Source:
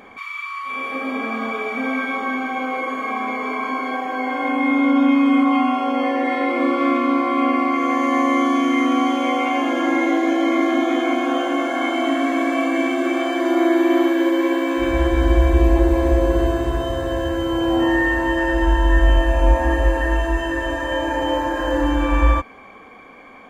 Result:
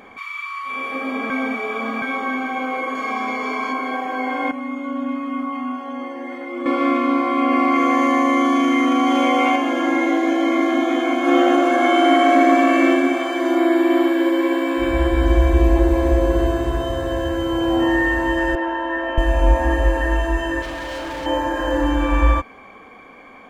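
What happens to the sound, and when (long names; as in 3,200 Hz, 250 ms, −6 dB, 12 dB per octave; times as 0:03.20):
0:01.30–0:02.02: reverse
0:02.95–0:03.73: parametric band 5,400 Hz +9.5 dB 0.94 octaves
0:04.51–0:06.66: stiff-string resonator 83 Hz, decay 0.28 s, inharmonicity 0.008
0:07.50–0:09.56: envelope flattener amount 100%
0:11.19–0:12.89: thrown reverb, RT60 1.5 s, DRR −3.5 dB
0:13.57–0:15.26: notch filter 6,200 Hz, Q 8.3
0:18.55–0:19.18: band-pass filter 370–2,500 Hz
0:20.62–0:21.26: hard clipping −26.5 dBFS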